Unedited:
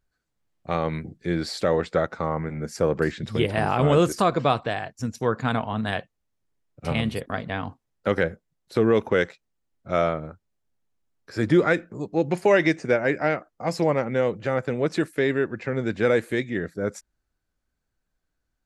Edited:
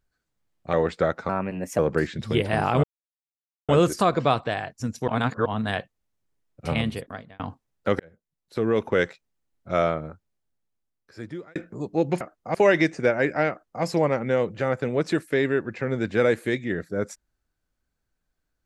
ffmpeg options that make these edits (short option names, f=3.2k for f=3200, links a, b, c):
-filter_complex "[0:a]asplit=12[a][b][c][d][e][f][g][h][i][j][k][l];[a]atrim=end=0.732[m];[b]atrim=start=1.668:end=2.234[n];[c]atrim=start=2.23:end=2.83,asetpts=PTS-STARTPTS,asetrate=53361,aresample=44100[o];[d]atrim=start=2.826:end=3.88,asetpts=PTS-STARTPTS,afade=t=out:st=1.05:d=0.004:c=hsin,apad=pad_dur=0.85[p];[e]atrim=start=3.88:end=5.272,asetpts=PTS-STARTPTS,afade=t=in:d=0.004:c=hsin[q];[f]atrim=start=5.268:end=5.652,asetpts=PTS-STARTPTS,areverse[r];[g]atrim=start=5.648:end=7.59,asetpts=PTS-STARTPTS,afade=t=out:st=1.342:d=0.6[s];[h]atrim=start=7.59:end=8.19,asetpts=PTS-STARTPTS,afade=t=in:d=0.004:c=hsin,afade=t=out:st=0.596:d=0.004:c=hsin[t];[i]atrim=start=8.19:end=11.75,asetpts=PTS-STARTPTS,afade=t=in:d=1.04,afade=t=out:st=2.09:d=1.47[u];[j]atrim=start=11.75:end=12.402,asetpts=PTS-STARTPTS,afade=t=in:d=0.004:c=hsin[v];[k]atrim=start=13.348:end=13.692[w];[l]atrim=start=12.398[x];[m][n]acrossfade=d=0.004:c1=hsin:c2=hsin[y];[y][o]acrossfade=d=0.004:c1=hsin:c2=hsin[z];[p][q]concat=n=2:v=0:a=1[aa];[z][aa]acrossfade=d=0.004:c1=hsin:c2=hsin[ab];[ab][r]acrossfade=d=0.004:c1=hsin:c2=hsin[ac];[s][t][u][v]concat=n=4:v=0:a=1[ad];[ac][ad]acrossfade=d=0.004:c1=hsin:c2=hsin[ae];[ae][w]acrossfade=d=0.004:c1=hsin:c2=hsin[af];[af][x]acrossfade=d=0.004:c1=hsin:c2=hsin"